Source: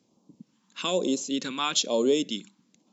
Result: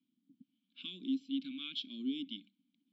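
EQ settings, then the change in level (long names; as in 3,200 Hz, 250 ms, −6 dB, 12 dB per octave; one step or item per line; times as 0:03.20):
formant filter i
parametric band 680 Hz −13 dB 1.8 octaves
phaser with its sweep stopped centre 1,900 Hz, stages 6
+2.0 dB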